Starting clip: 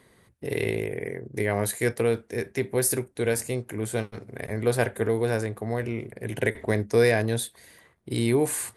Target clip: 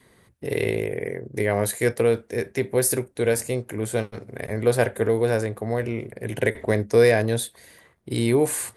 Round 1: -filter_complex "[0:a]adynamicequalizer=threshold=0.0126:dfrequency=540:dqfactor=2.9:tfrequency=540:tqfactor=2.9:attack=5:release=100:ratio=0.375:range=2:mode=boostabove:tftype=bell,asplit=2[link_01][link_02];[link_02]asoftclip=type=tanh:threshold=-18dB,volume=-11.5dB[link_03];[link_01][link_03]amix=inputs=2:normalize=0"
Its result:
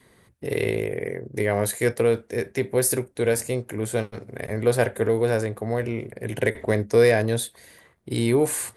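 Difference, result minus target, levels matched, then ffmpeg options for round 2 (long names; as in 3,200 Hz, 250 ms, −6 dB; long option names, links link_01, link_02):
soft clipping: distortion +10 dB
-filter_complex "[0:a]adynamicequalizer=threshold=0.0126:dfrequency=540:dqfactor=2.9:tfrequency=540:tqfactor=2.9:attack=5:release=100:ratio=0.375:range=2:mode=boostabove:tftype=bell,asplit=2[link_01][link_02];[link_02]asoftclip=type=tanh:threshold=-10dB,volume=-11.5dB[link_03];[link_01][link_03]amix=inputs=2:normalize=0"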